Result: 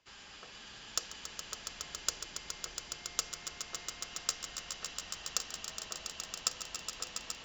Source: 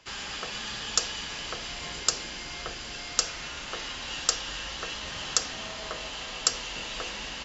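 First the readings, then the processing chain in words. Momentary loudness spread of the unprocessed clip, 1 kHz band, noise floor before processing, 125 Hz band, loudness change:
8 LU, −10.0 dB, −39 dBFS, −12.5 dB, −8.0 dB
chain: harmonic generator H 4 −33 dB, 7 −21 dB, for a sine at −2.5 dBFS
echo that builds up and dies away 139 ms, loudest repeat 5, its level −9 dB
level −7.5 dB

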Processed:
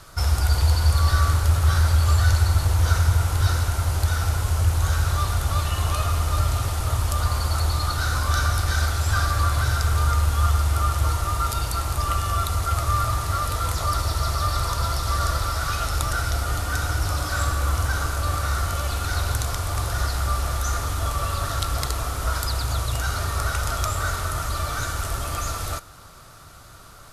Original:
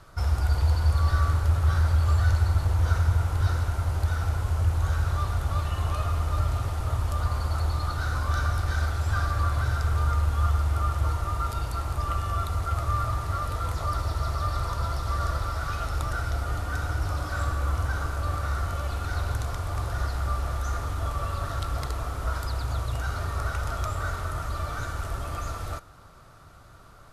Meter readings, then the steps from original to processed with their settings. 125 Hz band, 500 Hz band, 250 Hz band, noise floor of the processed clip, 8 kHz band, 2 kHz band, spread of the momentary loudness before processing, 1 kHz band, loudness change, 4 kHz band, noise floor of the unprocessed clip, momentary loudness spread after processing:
+3.5 dB, +4.0 dB, +3.5 dB, −44 dBFS, +13.5 dB, +6.0 dB, 8 LU, +5.0 dB, +4.5 dB, +11.0 dB, −49 dBFS, 6 LU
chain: high-shelf EQ 2,900 Hz +11.5 dB
level +3.5 dB

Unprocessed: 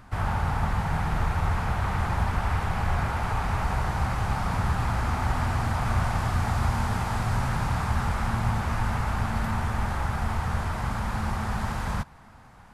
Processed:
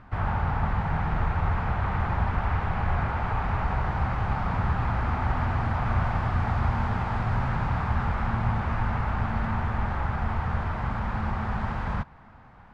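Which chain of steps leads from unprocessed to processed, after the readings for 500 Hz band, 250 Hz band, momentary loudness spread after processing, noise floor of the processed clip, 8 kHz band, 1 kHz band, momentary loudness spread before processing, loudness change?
0.0 dB, 0.0 dB, 3 LU, −50 dBFS, below −15 dB, 0.0 dB, 3 LU, 0.0 dB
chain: low-pass filter 2,600 Hz 12 dB per octave

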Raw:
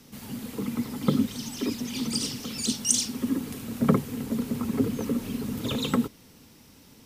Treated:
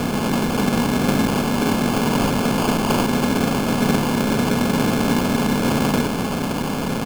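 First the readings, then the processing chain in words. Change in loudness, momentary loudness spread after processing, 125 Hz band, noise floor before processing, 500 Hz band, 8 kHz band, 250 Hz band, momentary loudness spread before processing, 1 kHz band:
+8.5 dB, 3 LU, +10.5 dB, −54 dBFS, +12.5 dB, +0.5 dB, +9.0 dB, 8 LU, +17.5 dB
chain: compressor on every frequency bin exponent 0.2
double-tracking delay 29 ms −13.5 dB
decimation without filtering 23×
level −2 dB

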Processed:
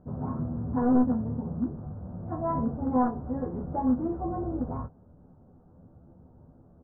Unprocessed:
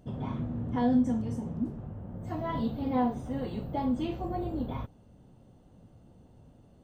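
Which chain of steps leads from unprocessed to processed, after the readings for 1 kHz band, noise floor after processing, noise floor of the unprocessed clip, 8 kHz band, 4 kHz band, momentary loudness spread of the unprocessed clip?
+3.0 dB, −57 dBFS, −58 dBFS, can't be measured, below −30 dB, 12 LU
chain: wavefolder on the positive side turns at −23 dBFS
Butterworth low-pass 1,500 Hz 48 dB per octave
ambience of single reflections 12 ms −4 dB, 27 ms −8 dB

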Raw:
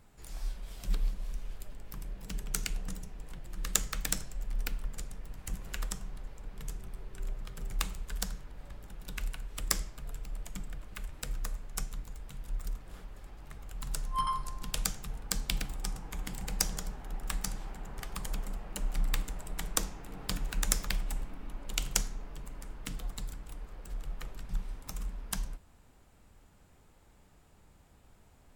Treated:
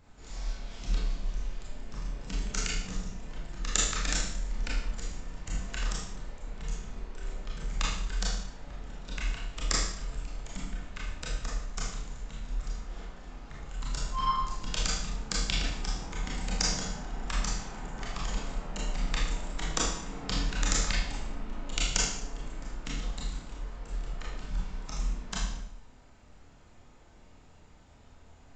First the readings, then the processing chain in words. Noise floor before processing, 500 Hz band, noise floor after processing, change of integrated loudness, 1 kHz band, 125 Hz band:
−60 dBFS, +6.0 dB, −55 dBFS, +3.5 dB, +4.5 dB, +3.5 dB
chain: four-comb reverb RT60 0.63 s, combs from 25 ms, DRR −4.5 dB
downsampling to 16,000 Hz

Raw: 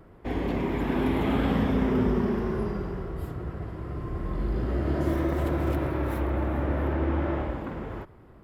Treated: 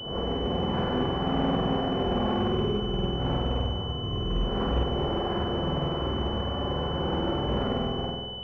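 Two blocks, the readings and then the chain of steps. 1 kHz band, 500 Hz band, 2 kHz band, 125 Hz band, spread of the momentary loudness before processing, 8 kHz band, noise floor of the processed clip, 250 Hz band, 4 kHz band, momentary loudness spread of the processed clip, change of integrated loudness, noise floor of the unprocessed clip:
+3.5 dB, +1.5 dB, −3.0 dB, −0.5 dB, 11 LU, can't be measured, −32 dBFS, −1.5 dB, +17.0 dB, 4 LU, 0.0 dB, −51 dBFS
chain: wind on the microphone 560 Hz −34 dBFS
wave folding −23.5 dBFS
notch comb filter 310 Hz
flutter between parallel walls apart 8.3 metres, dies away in 1.2 s
switching amplifier with a slow clock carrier 3,000 Hz

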